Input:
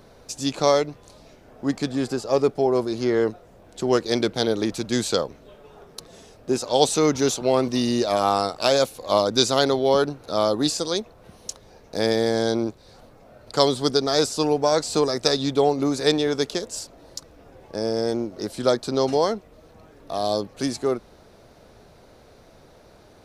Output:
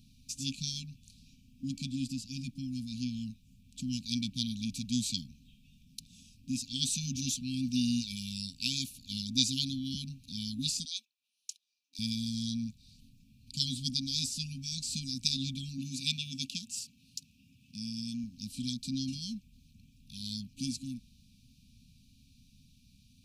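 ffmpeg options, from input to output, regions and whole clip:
ffmpeg -i in.wav -filter_complex "[0:a]asettb=1/sr,asplit=3[link_01][link_02][link_03];[link_01]atrim=end=10.854[link_04];[link_02]atrim=start=10.85:end=11.99,asetpts=PTS-STARTPTS,afade=type=in:duration=0.004:curve=qsin,afade=type=out:start_time=1.136:duration=0.004:curve=qsin,highpass=frequency=600:width=0.5412,highpass=frequency=600:width=1.3066,agate=range=-14dB:threshold=-47dB:ratio=16:release=100:detection=peak,highshelf=frequency=5500:gain=-5[link_05];[link_03]atrim=start=11.986[link_06];[link_04][link_05]acrossfade=duration=0.004:curve1=hsin:curve2=qsin[link_07];[link_07][link_06]acrossfade=duration=0.004:curve1=qsin:curve2=hsin,asettb=1/sr,asplit=3[link_08][link_09][link_10];[link_08]atrim=end=15.784[link_11];[link_09]atrim=start=15.78:end=18.24,asetpts=PTS-STARTPTS,afade=type=in:duration=0.004:curve=qsin,afade=type=out:start_time=2.456:duration=0.004:curve=qsin,highpass=120,equalizer=frequency=2700:width=4.7:gain=6.5[link_12];[link_10]atrim=start=18.236[link_13];[link_11][link_12]acrossfade=duration=0.004:curve1=hsin:curve2=qsin[link_14];[link_14][link_13]acrossfade=duration=0.004:curve1=qsin:curve2=hsin,afftfilt=real='re*(1-between(b*sr/4096,270,2300))':imag='im*(1-between(b*sr/4096,270,2300))':win_size=4096:overlap=0.75,equalizer=frequency=1400:width=1.6:gain=-10,volume=-6dB" out.wav

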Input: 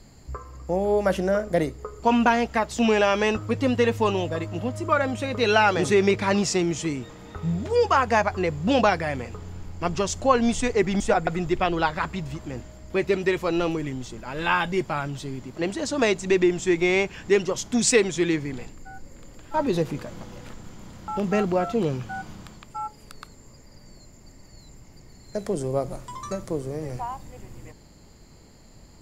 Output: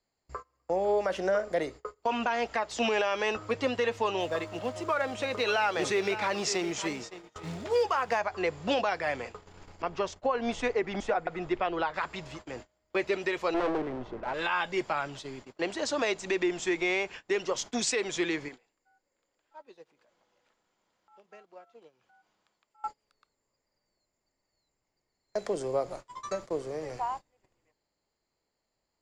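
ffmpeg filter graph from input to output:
ffmpeg -i in.wav -filter_complex "[0:a]asettb=1/sr,asplit=3[link_01][link_02][link_03];[link_01]atrim=end=4.204[link_04];[link_02]atrim=start=4.2:end=8.19,asetpts=PTS-STARTPTS,afade=type=in:duration=0.004:curve=qsin,afade=type=out:start_time=3.986:duration=0.004:curve=qsin,acrusher=bits=6:mode=log:mix=0:aa=0.000001,aecho=1:1:559:0.168,atrim=end_sample=175959[link_05];[link_03]atrim=start=8.186[link_06];[link_04][link_05]acrossfade=duration=0.004:curve1=hsin:curve2=qsin[link_07];[link_07][link_06]acrossfade=duration=0.004:curve1=qsin:curve2=hsin,asettb=1/sr,asplit=3[link_08][link_09][link_10];[link_08]atrim=end=9.824[link_11];[link_09]atrim=start=9.82:end=11.94,asetpts=PTS-STARTPTS,afade=type=in:duration=0.004:curve=qsin,afade=type=out:start_time=2.116:duration=0.004:curve=qsin,aemphasis=mode=reproduction:type=75fm,agate=range=-33dB:threshold=-30dB:ratio=3:release=100:detection=peak[link_12];[link_10]atrim=start=11.936[link_13];[link_11][link_12]acrossfade=duration=0.004:curve1=hsin:curve2=qsin[link_14];[link_14][link_13]acrossfade=duration=0.004:curve1=qsin:curve2=hsin,asettb=1/sr,asplit=3[link_15][link_16][link_17];[link_15]atrim=end=13.544[link_18];[link_16]atrim=start=13.54:end=14.34,asetpts=PTS-STARTPTS,afade=type=in:duration=0.004:curve=qsin,afade=type=out:start_time=0.796:duration=0.004:curve=qsin,lowpass=1100,acontrast=90,aeval=exprs='clip(val(0),-1,0.0316)':channel_layout=same[link_19];[link_17]atrim=start=14.336[link_20];[link_18][link_19]acrossfade=duration=0.004:curve1=hsin:curve2=qsin[link_21];[link_21][link_20]acrossfade=duration=0.004:curve1=qsin:curve2=hsin,asettb=1/sr,asplit=3[link_22][link_23][link_24];[link_22]atrim=end=18.484[link_25];[link_23]atrim=start=18.48:end=22.84,asetpts=PTS-STARTPTS,afade=type=in:duration=0.004:curve=qsin,afade=type=out:start_time=4.356:duration=0.004:curve=qsin,lowshelf=frequency=180:gain=-11,acompressor=threshold=-36dB:ratio=5:attack=3.2:release=140:knee=1:detection=peak,bandreject=frequency=1200:width=26[link_26];[link_24]atrim=start=22.836[link_27];[link_25][link_26]acrossfade=duration=0.004:curve1=hsin:curve2=qsin[link_28];[link_28][link_27]acrossfade=duration=0.004:curve1=qsin:curve2=hsin,agate=range=-25dB:threshold=-35dB:ratio=16:detection=peak,acrossover=split=380 7300:gain=0.178 1 0.112[link_29][link_30][link_31];[link_29][link_30][link_31]amix=inputs=3:normalize=0,alimiter=limit=-18.5dB:level=0:latency=1:release=186" out.wav

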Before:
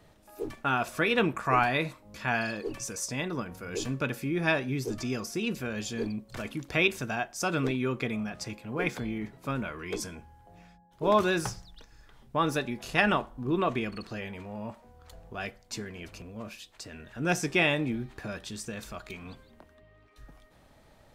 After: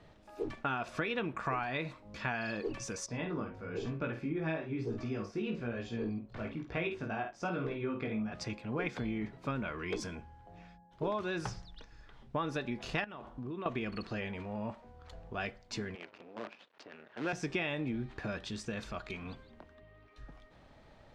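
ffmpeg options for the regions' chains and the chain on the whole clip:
ffmpeg -i in.wav -filter_complex "[0:a]asettb=1/sr,asplit=3[link_01][link_02][link_03];[link_01]atrim=end=3.064[link_04];[link_02]atrim=start=3.06:end=8.32,asetpts=PTS-STARTPTS,afade=type=in:duration=0.004:curve=qsin,afade=type=out:start_time=5.256:duration=0.004:curve=qsin,flanger=delay=17:depth=2.3:speed=1.1,lowpass=frequency=1600:poles=1,asplit=2[link_05][link_06];[link_06]adelay=50,volume=-7.5dB[link_07];[link_05][link_07]amix=inputs=2:normalize=0,atrim=end_sample=231966[link_08];[link_03]atrim=start=8.316[link_09];[link_04][link_08]acrossfade=duration=0.004:curve1=hsin:curve2=qsin[link_10];[link_10][link_09]acrossfade=duration=0.004:curve1=qsin:curve2=hsin,asettb=1/sr,asplit=3[link_11][link_12][link_13];[link_11]atrim=end=13.044[link_14];[link_12]atrim=start=13.04:end=13.66,asetpts=PTS-STARTPTS,afade=type=in:duration=0.004:curve=qsin,afade=type=out:start_time=0.616:duration=0.004:curve=qsin,acompressor=threshold=-37dB:ratio=12:attack=3.2:release=140:knee=1:detection=peak,highpass=50[link_15];[link_13]atrim=start=13.656[link_16];[link_14][link_15]acrossfade=duration=0.004:curve1=hsin:curve2=qsin[link_17];[link_17][link_16]acrossfade=duration=0.004:curve1=qsin:curve2=hsin,asettb=1/sr,asplit=3[link_18][link_19][link_20];[link_18]atrim=end=15.954[link_21];[link_19]atrim=start=15.95:end=17.33,asetpts=PTS-STARTPTS,afade=type=in:duration=0.004:curve=qsin,afade=type=out:start_time=1.376:duration=0.004:curve=qsin,acrusher=bits=7:dc=4:mix=0:aa=0.000001,adynamicsmooth=sensitivity=4.5:basefreq=2400,highpass=320[link_22];[link_20]atrim=start=17.326[link_23];[link_21][link_22]acrossfade=duration=0.004:curve1=hsin:curve2=qsin[link_24];[link_24][link_23]acrossfade=duration=0.004:curve1=qsin:curve2=hsin,lowpass=4600,acompressor=threshold=-31dB:ratio=10" out.wav

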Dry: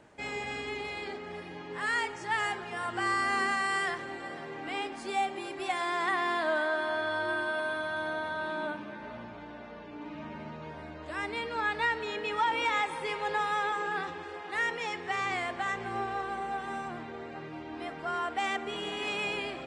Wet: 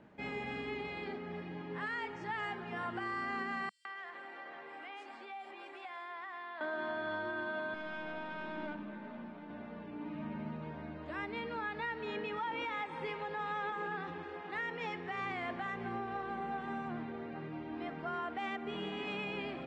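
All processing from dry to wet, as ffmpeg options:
ffmpeg -i in.wav -filter_complex "[0:a]asettb=1/sr,asplit=3[link_01][link_02][link_03];[link_01]atrim=end=3.694[link_04];[link_02]atrim=start=3.69:end=6.61,asetpts=PTS-STARTPTS,afade=type=in:duration=0.004:curve=qsin,afade=type=out:start_time=2.916:duration=0.004:curve=qsin,acompressor=threshold=-36dB:ratio=12:attack=3.2:release=140:knee=1:detection=peak,highpass=640,acrossover=split=4800[link_05][link_06];[link_05]adelay=160[link_07];[link_07][link_06]amix=inputs=2:normalize=0,atrim=end_sample=128772[link_08];[link_03]atrim=start=6.606[link_09];[link_04][link_08]acrossfade=duration=0.004:curve1=hsin:curve2=qsin[link_10];[link_10][link_09]acrossfade=duration=0.004:curve1=qsin:curve2=hsin,asettb=1/sr,asplit=3[link_11][link_12][link_13];[link_11]atrim=end=7.744[link_14];[link_12]atrim=start=7.74:end=9.5,asetpts=PTS-STARTPTS,afade=type=in:duration=0.004:curve=qsin,afade=type=out:start_time=1.756:duration=0.004:curve=qsin,highpass=frequency=160:width=0.5412,highpass=frequency=160:width=1.3066,aeval=exprs='(tanh(39.8*val(0)+0.55)-tanh(0.55))/39.8':channel_layout=same[link_15];[link_13]atrim=start=9.496[link_16];[link_14][link_15]acrossfade=duration=0.004:curve1=hsin:curve2=qsin[link_17];[link_17][link_16]acrossfade=duration=0.004:curve1=qsin:curve2=hsin,lowpass=3300,equalizer=frequency=200:width=1.5:gain=10,alimiter=level_in=1.5dB:limit=-24dB:level=0:latency=1:release=178,volume=-1.5dB,volume=-4.5dB" out.wav

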